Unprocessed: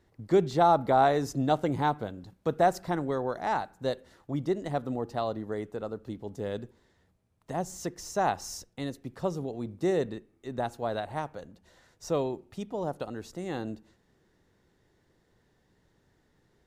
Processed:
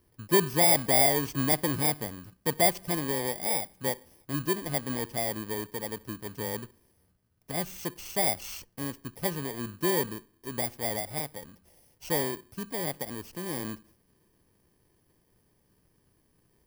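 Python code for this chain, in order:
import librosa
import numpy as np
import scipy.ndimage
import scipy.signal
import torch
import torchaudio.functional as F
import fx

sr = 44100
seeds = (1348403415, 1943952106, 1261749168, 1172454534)

y = fx.bit_reversed(x, sr, seeds[0], block=32)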